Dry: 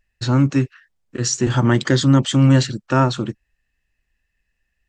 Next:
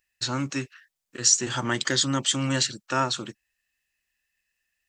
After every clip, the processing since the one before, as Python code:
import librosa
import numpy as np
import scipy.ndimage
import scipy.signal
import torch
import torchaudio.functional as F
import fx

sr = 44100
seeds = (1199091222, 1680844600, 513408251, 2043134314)

y = fx.tilt_eq(x, sr, slope=3.5)
y = y * librosa.db_to_amplitude(-6.0)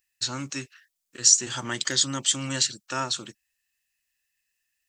y = fx.high_shelf(x, sr, hz=3200.0, db=10.5)
y = y * librosa.db_to_amplitude(-6.0)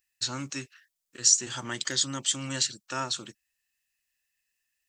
y = fx.rider(x, sr, range_db=3, speed_s=2.0)
y = y * librosa.db_to_amplitude(-5.0)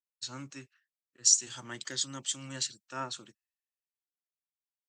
y = fx.band_widen(x, sr, depth_pct=70)
y = y * librosa.db_to_amplitude(-8.0)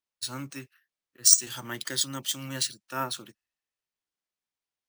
y = np.repeat(scipy.signal.resample_poly(x, 1, 3), 3)[:len(x)]
y = y * librosa.db_to_amplitude(6.0)